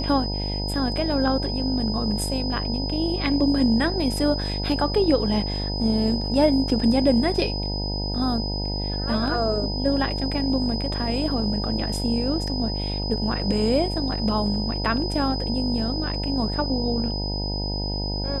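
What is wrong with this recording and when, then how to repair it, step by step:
buzz 50 Hz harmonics 19 -28 dBFS
tone 5000 Hz -30 dBFS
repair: notch 5000 Hz, Q 30; de-hum 50 Hz, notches 19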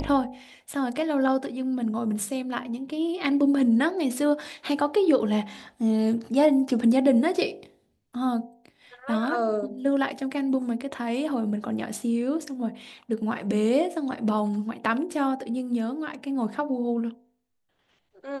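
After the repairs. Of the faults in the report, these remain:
none

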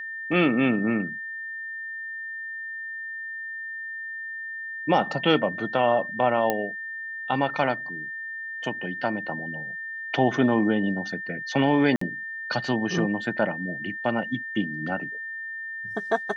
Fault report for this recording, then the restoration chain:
tone 1800 Hz -32 dBFS
6.5 pop -10 dBFS
11.96–12.01 gap 54 ms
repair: de-click; notch 1800 Hz, Q 30; interpolate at 11.96, 54 ms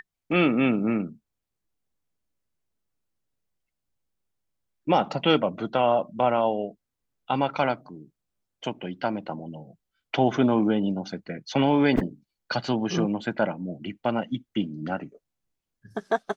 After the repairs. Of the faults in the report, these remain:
none

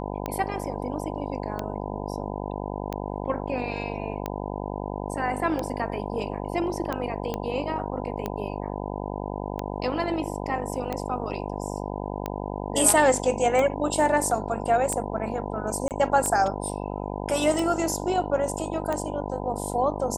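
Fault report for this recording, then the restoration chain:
buzz 50 Hz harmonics 20 -32 dBFS
tick 45 rpm -15 dBFS
7.34 pop -15 dBFS
15.88–15.91 gap 28 ms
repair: de-click; de-hum 50 Hz, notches 20; interpolate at 15.88, 28 ms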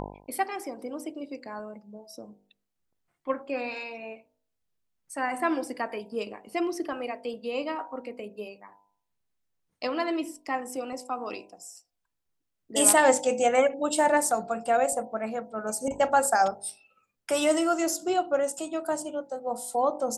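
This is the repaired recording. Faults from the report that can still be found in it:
none

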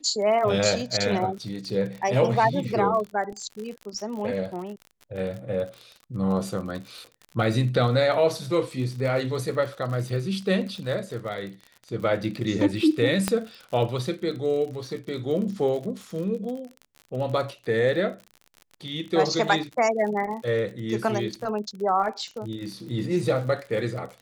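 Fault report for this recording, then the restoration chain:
crackle 48/s -33 dBFS
13.28 pop -8 dBFS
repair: de-click

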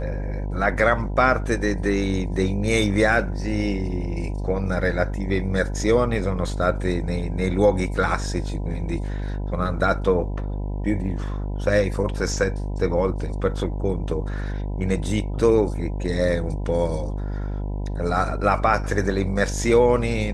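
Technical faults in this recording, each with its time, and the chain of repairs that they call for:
buzz 50 Hz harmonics 20 -27 dBFS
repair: de-hum 50 Hz, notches 20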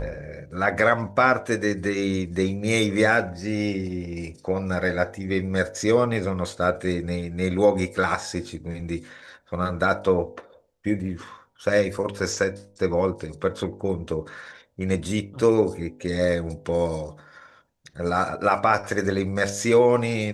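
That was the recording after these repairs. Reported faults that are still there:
none

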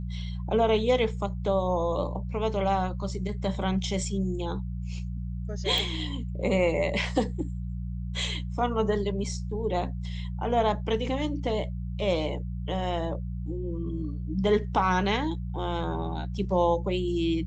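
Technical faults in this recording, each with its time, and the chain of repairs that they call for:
hum 60 Hz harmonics 3 -33 dBFS
5.78 pop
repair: de-click; de-hum 60 Hz, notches 3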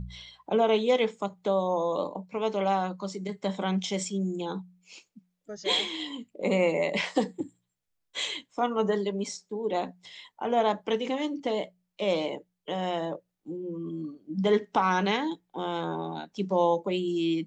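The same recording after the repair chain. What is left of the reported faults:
none

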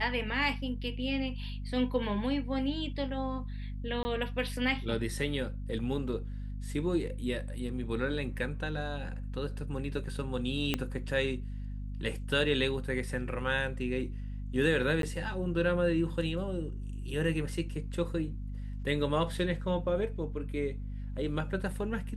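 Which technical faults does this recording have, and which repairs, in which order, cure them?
hum 50 Hz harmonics 5 -38 dBFS
4.03–4.05 gap 20 ms
10.74 pop -14 dBFS
15.02–15.03 gap 12 ms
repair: de-click; de-hum 50 Hz, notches 5; interpolate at 4.03, 20 ms; interpolate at 15.02, 12 ms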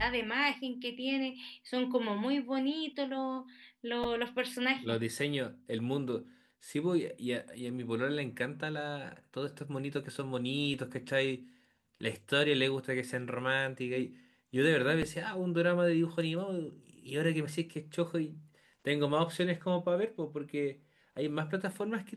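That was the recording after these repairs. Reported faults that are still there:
10.74 pop

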